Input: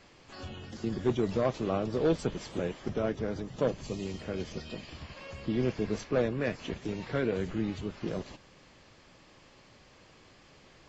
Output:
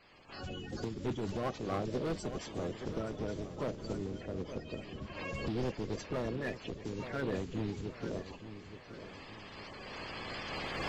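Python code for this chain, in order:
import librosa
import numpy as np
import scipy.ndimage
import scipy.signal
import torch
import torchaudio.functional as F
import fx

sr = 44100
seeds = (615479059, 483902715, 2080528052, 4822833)

y = fx.spec_quant(x, sr, step_db=30)
y = fx.recorder_agc(y, sr, target_db=-23.0, rise_db_per_s=9.1, max_gain_db=30)
y = fx.high_shelf(y, sr, hz=3500.0, db=-11.0, at=(3.93, 5.15))
y = np.clip(y, -10.0 ** (-27.0 / 20.0), 10.0 ** (-27.0 / 20.0))
y = fx.echo_feedback(y, sr, ms=873, feedback_pct=46, wet_db=-11)
y = fx.am_noise(y, sr, seeds[0], hz=5.7, depth_pct=50)
y = F.gain(torch.from_numpy(y), -1.5).numpy()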